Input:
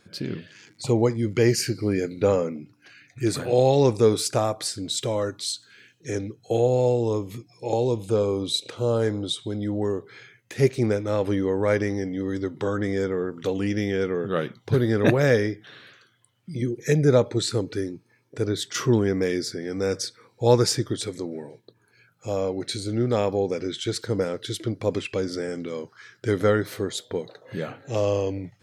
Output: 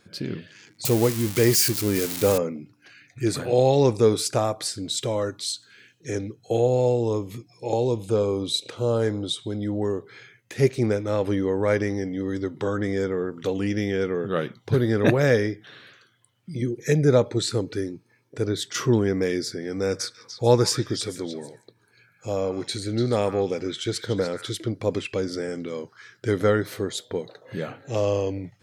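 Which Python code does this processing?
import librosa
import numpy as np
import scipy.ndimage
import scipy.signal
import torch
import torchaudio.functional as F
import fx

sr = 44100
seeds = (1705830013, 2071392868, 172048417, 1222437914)

y = fx.crossing_spikes(x, sr, level_db=-15.5, at=(0.85, 2.38))
y = fx.echo_stepped(y, sr, ms=146, hz=1600.0, octaves=1.4, feedback_pct=70, wet_db=-4.5, at=(19.85, 24.58))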